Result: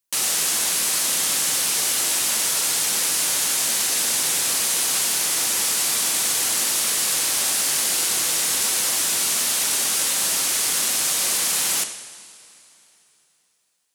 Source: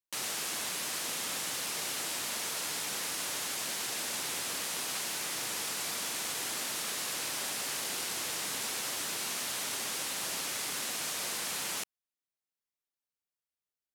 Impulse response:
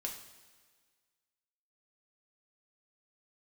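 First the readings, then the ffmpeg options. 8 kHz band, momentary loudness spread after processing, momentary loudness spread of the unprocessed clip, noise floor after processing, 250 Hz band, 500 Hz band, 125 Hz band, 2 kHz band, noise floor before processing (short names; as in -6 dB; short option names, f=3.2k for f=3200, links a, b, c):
+16.0 dB, 0 LU, 0 LU, -65 dBFS, +8.5 dB, +8.5 dB, +8.5 dB, +10.0 dB, under -85 dBFS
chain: -filter_complex "[0:a]highshelf=f=5.2k:g=10.5,asplit=2[a][b];[1:a]atrim=start_sample=2205,asetrate=22932,aresample=44100[c];[b][c]afir=irnorm=-1:irlink=0,volume=-4.5dB[d];[a][d]amix=inputs=2:normalize=0,volume=3.5dB"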